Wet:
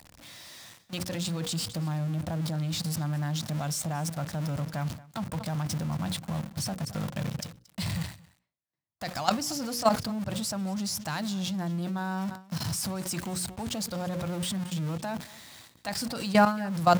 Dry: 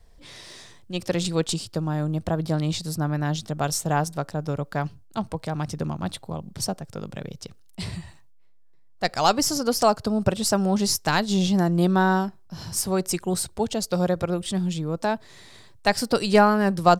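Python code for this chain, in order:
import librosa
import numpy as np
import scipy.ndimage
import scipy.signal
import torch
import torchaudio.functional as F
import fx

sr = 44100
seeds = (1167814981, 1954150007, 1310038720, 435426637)

p1 = x + 0.5 * 10.0 ** (-27.5 / 20.0) * np.sign(x)
p2 = fx.hum_notches(p1, sr, base_hz=60, count=9)
p3 = fx.level_steps(p2, sr, step_db=15)
p4 = scipy.signal.sosfilt(scipy.signal.butter(2, 83.0, 'highpass', fs=sr, output='sos'), p3)
p5 = fx.peak_eq(p4, sr, hz=410.0, db=-12.0, octaves=0.38)
p6 = p5 + fx.echo_single(p5, sr, ms=228, db=-21.5, dry=0)
p7 = fx.dynamic_eq(p6, sr, hz=120.0, q=0.88, threshold_db=-46.0, ratio=4.0, max_db=4)
p8 = fx.sustainer(p7, sr, db_per_s=140.0)
y = F.gain(torch.from_numpy(p8), -2.0).numpy()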